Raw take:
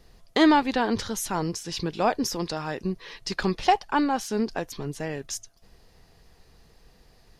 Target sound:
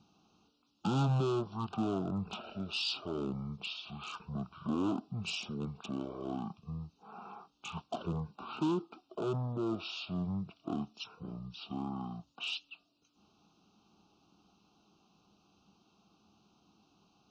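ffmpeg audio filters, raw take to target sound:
-filter_complex "[0:a]acrossover=split=410[a][b];[a]acompressor=mode=upward:threshold=-45dB:ratio=2.5[c];[b]asoftclip=type=hard:threshold=-25.5dB[d];[c][d]amix=inputs=2:normalize=0,asetrate=18846,aresample=44100,asuperstop=centerf=1900:order=8:qfactor=1.5,highpass=200,equalizer=f=210:t=q:w=4:g=3,equalizer=f=530:t=q:w=4:g=-9,equalizer=f=1.9k:t=q:w=4:g=8,equalizer=f=3.7k:t=q:w=4:g=3,equalizer=f=7k:t=q:w=4:g=5,lowpass=f=8k:w=0.5412,lowpass=f=8k:w=1.3066,volume=-4.5dB"

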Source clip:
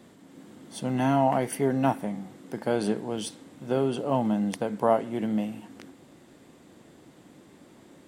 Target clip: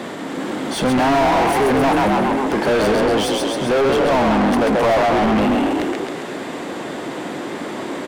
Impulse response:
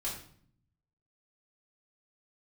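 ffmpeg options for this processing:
-filter_complex "[0:a]asplit=7[a][b][c][d][e][f][g];[b]adelay=134,afreqshift=34,volume=-6dB[h];[c]adelay=268,afreqshift=68,volume=-12.4dB[i];[d]adelay=402,afreqshift=102,volume=-18.8dB[j];[e]adelay=536,afreqshift=136,volume=-25.1dB[k];[f]adelay=670,afreqshift=170,volume=-31.5dB[l];[g]adelay=804,afreqshift=204,volume=-37.9dB[m];[a][h][i][j][k][l][m]amix=inputs=7:normalize=0,asplit=2[n][o];[o]highpass=f=720:p=1,volume=38dB,asoftclip=type=tanh:threshold=-8.5dB[p];[n][p]amix=inputs=2:normalize=0,lowpass=f=1.9k:p=1,volume=-6dB"

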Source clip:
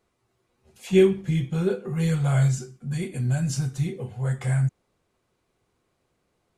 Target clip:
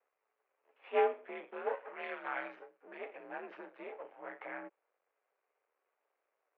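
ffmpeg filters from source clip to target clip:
-filter_complex "[0:a]aeval=exprs='max(val(0),0)':c=same,highpass=f=400:t=q:w=0.5412,highpass=f=400:t=q:w=1.307,lowpass=f=2.5k:t=q:w=0.5176,lowpass=f=2.5k:t=q:w=0.7071,lowpass=f=2.5k:t=q:w=1.932,afreqshift=52,asettb=1/sr,asplit=3[a][b][c];[a]atrim=end=1.754[d];[b]atrim=start=1.75:end=2.56,asetpts=PTS-STARTPTS,afade=t=in:d=0.004:c=qsin,afade=t=out:st=0.806:d=0.004:c=qsin,tiltshelf=f=920:g=-5.5[e];[c]atrim=start=2.556[f];[d][e]acrossfade=d=0.004:c1=hsin:c2=qsin[g];[g][f]acrossfade=d=0.004:c1=qsin:c2=hsin,volume=-3.5dB"

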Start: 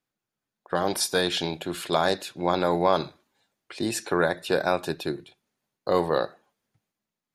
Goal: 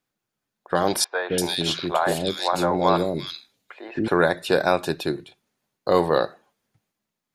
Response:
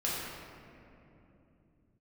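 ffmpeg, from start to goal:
-filter_complex "[0:a]asettb=1/sr,asplit=3[a][b][c];[a]atrim=end=1.044[d];[b]atrim=start=1.04:end=4.08,asetpts=PTS-STARTPTS,afade=t=in:d=0.004:c=qsin,afade=t=out:st=3.036:d=0.004:c=qsin,acrossover=split=510|2200[e][f][g];[e]adelay=170[h];[g]adelay=340[i];[h][f][i]amix=inputs=3:normalize=0,atrim=end_sample=134064[j];[c]atrim=start=4.076[k];[d][j]acrossfade=d=0.004:c1=hsin:c2=qsin[l];[l][k]acrossfade=d=0.004:c1=qsin:c2=hsin,volume=4dB"

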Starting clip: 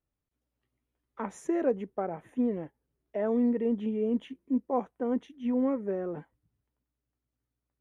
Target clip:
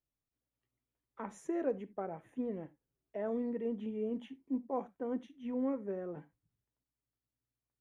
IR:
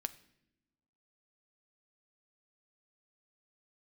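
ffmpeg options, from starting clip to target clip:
-filter_complex "[0:a]asettb=1/sr,asplit=3[a][b][c];[a]atrim=end=4.204[d];[b]atrim=start=4.2:end=4.63,asetpts=PTS-STARTPTS,afade=t=in:d=0.004:c=qsin,afade=t=out:st=0.426:d=0.004:c=qsin,equalizer=f=820:t=o:w=0.3:g=10.5[e];[c]atrim=start=4.626[f];[d][e]acrossfade=d=0.004:c1=hsin:c2=qsin[g];[g][f]acrossfade=d=0.004:c1=qsin:c2=hsin[h];[1:a]atrim=start_sample=2205,atrim=end_sample=3969[i];[h][i]afir=irnorm=-1:irlink=0,volume=-6dB"

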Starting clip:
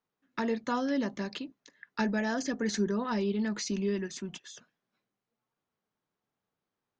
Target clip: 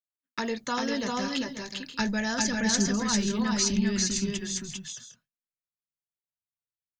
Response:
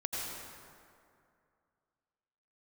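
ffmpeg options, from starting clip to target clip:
-filter_complex "[0:a]agate=range=-33dB:threshold=-57dB:ratio=3:detection=peak,crystalizer=i=4:c=0,asubboost=boost=12:cutoff=110,asplit=2[a][b];[b]aecho=0:1:396|404|534|560:0.668|0.398|0.251|0.158[c];[a][c]amix=inputs=2:normalize=0"

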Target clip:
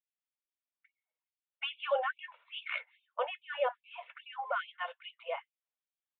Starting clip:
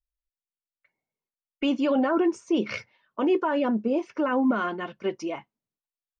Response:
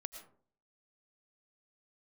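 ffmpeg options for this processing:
-af "aresample=8000,aresample=44100,afftfilt=real='re*gte(b*sr/1024,440*pow(2300/440,0.5+0.5*sin(2*PI*2.4*pts/sr)))':imag='im*gte(b*sr/1024,440*pow(2300/440,0.5+0.5*sin(2*PI*2.4*pts/sr)))':win_size=1024:overlap=0.75,volume=-2dB"

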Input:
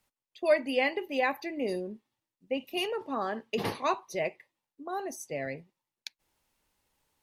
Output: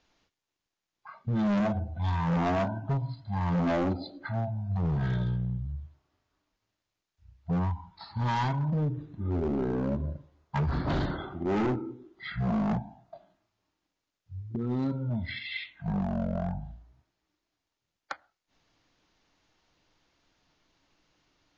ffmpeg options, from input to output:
-af "asoftclip=type=hard:threshold=-30dB,asetrate=14774,aresample=44100,volume=5.5dB"

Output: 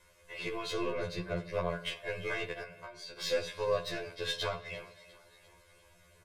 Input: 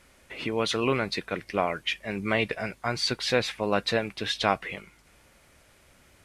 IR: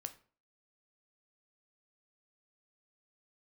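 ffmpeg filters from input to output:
-filter_complex "[0:a]asettb=1/sr,asplit=3[a][b][c];[a]atrim=end=0.714[d];[b]atrim=start=0.71:end=1.54,asetpts=PTS-STARTPTS,afade=t=in:d=0.004:c=qsin,afade=t=out:st=0.826:d=0.004:c=qsin,tiltshelf=f=1.1k:g=5[e];[c]atrim=start=1.536[f];[d][e]acrossfade=d=0.004:c1=hsin:c2=qsin[g];[g][f]acrossfade=d=0.004:c1=qsin:c2=hsin,acrossover=split=180[h][i];[i]acompressor=threshold=-31dB:ratio=4[j];[h][j]amix=inputs=2:normalize=0,asplit=6[k][l][m][n][o][p];[l]adelay=348,afreqshift=49,volume=-18dB[q];[m]adelay=696,afreqshift=98,volume=-22.7dB[r];[n]adelay=1044,afreqshift=147,volume=-27.5dB[s];[o]adelay=1392,afreqshift=196,volume=-32.2dB[t];[p]adelay=1740,afreqshift=245,volume=-36.9dB[u];[k][q][r][s][t][u]amix=inputs=6:normalize=0,asettb=1/sr,asplit=3[v][w][x];[v]atrim=end=4.154[y];[w]atrim=start=4.15:end=4.66,asetpts=PTS-STARTPTS,afade=t=in:d=0.004:c=qsin,afade=t=out:st=0.506:d=0.004:c=qsin,agate=range=-33dB:threshold=-35dB:ratio=3:detection=peak[z];[x]atrim=start=4.656[aa];[y][z]acrossfade=d=0.004:c1=hsin:c2=qsin[ab];[ab][aa]acrossfade=d=0.004:c1=qsin:c2=hsin[ac];[1:a]atrim=start_sample=2205,asetrate=27342,aresample=44100[ad];[ac][ad]afir=irnorm=-1:irlink=0,asettb=1/sr,asplit=3[ae][af][ag];[ae]atrim=end=2.624[ah];[af]atrim=start=2.62:end=3.17,asetpts=PTS-STARTPTS,afade=t=in:d=0.004:c=qsin,afade=t=out:st=0.546:d=0.004:c=qsin,acompressor=threshold=-39dB:ratio=10[ai];[ag]atrim=start=3.166[aj];[ah][ai]acrossfade=d=0.004:c1=hsin:c2=qsin[ak];[ak][aj]acrossfade=d=0.004:c1=qsin:c2=hsin,aeval=exprs='0.119*(cos(1*acos(clip(val(0)/0.119,-1,1)))-cos(1*PI/2))+0.00211*(cos(6*acos(clip(val(0)/0.119,-1,1)))-cos(6*PI/2))+0.00668*(cos(7*acos(clip(val(0)/0.119,-1,1)))-cos(7*PI/2))':c=same,aecho=1:1:1.9:0.97,afftfilt=real='re*2*eq(mod(b,4),0)':imag='im*2*eq(mod(b,4),0)':win_size=2048:overlap=0.75"

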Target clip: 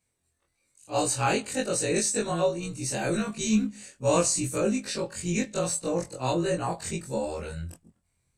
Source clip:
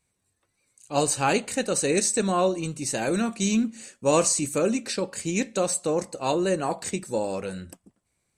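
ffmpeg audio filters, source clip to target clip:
-af "afftfilt=real='re':imag='-im':win_size=2048:overlap=0.75,asubboost=boost=3:cutoff=160,volume=2dB"

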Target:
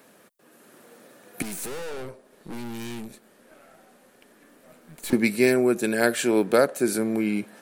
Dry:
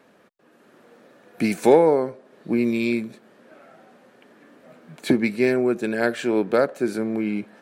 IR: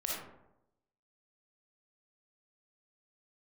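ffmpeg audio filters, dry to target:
-filter_complex "[0:a]aemphasis=mode=production:type=50kf,asettb=1/sr,asplit=3[a][b][c];[a]atrim=end=1.424[d];[b]atrim=start=1.42:end=5.13,asetpts=PTS-STARTPTS,afade=t=in:d=0.004:c=qsin,afade=t=out:st=3.706:d=0.004:c=qsin,aeval=exprs='(tanh(50.1*val(0)+0.75)-tanh(0.75))/50.1':c=same[e];[c]atrim=start=5.126[f];[d][e]acrossfade=d=0.004:c1=hsin:c2=qsin[g];[g][f]acrossfade=d=0.004:c1=qsin:c2=hsin,equalizer=f=10k:t=o:w=0.96:g=5.5"

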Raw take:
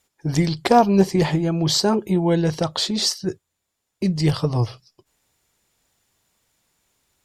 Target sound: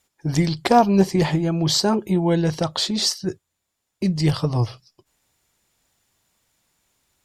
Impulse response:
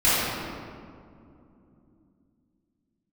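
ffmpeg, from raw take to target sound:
-af "equalizer=f=440:w=3.7:g=-2.5"

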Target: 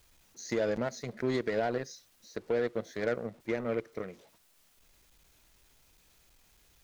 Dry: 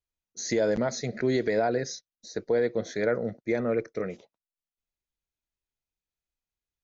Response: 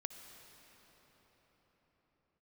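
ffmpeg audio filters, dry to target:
-af "aeval=exprs='val(0)+0.5*0.00891*sgn(val(0))':c=same,aeval=exprs='0.178*(cos(1*acos(clip(val(0)/0.178,-1,1)))-cos(1*PI/2))+0.0141*(cos(3*acos(clip(val(0)/0.178,-1,1)))-cos(3*PI/2))+0.0112*(cos(7*acos(clip(val(0)/0.178,-1,1)))-cos(7*PI/2))':c=same,volume=-4.5dB"

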